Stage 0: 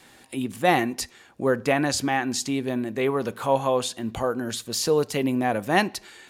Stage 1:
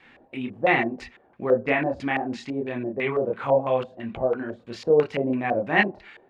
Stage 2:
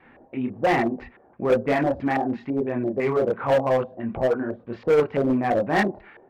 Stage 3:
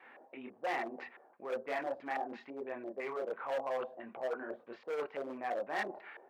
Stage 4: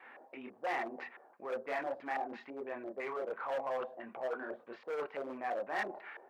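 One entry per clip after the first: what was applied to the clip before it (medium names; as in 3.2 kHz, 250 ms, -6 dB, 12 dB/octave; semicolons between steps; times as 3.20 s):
chorus voices 4, 1.1 Hz, delay 28 ms, depth 3.2 ms; LFO low-pass square 3 Hz 620–2300 Hz
low-pass 1.4 kHz 12 dB/octave; in parallel at -4 dB: wavefolder -21.5 dBFS
reverse; compression 4:1, threshold -31 dBFS, peak gain reduction 14 dB; reverse; high-pass 540 Hz 12 dB/octave; trim -2 dB
in parallel at -6 dB: saturation -39 dBFS, distortion -8 dB; on the sum: peaking EQ 1.3 kHz +3.5 dB 2.1 oct; trim -4 dB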